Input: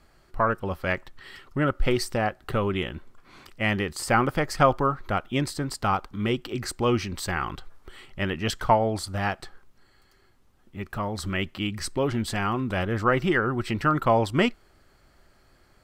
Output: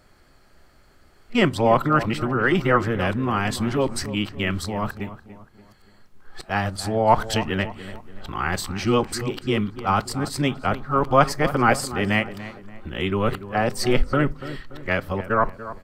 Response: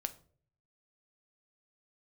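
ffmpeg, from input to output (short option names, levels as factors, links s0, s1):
-filter_complex "[0:a]areverse,asplit=2[s0][s1];[s1]adelay=288,lowpass=f=1900:p=1,volume=0.211,asplit=2[s2][s3];[s3]adelay=288,lowpass=f=1900:p=1,volume=0.44,asplit=2[s4][s5];[s5]adelay=288,lowpass=f=1900:p=1,volume=0.44,asplit=2[s6][s7];[s7]adelay=288,lowpass=f=1900:p=1,volume=0.44[s8];[s0][s2][s4][s6][s8]amix=inputs=5:normalize=0,asplit=2[s9][s10];[1:a]atrim=start_sample=2205,asetrate=70560,aresample=44100[s11];[s10][s11]afir=irnorm=-1:irlink=0,volume=1.12[s12];[s9][s12]amix=inputs=2:normalize=0,volume=0.891"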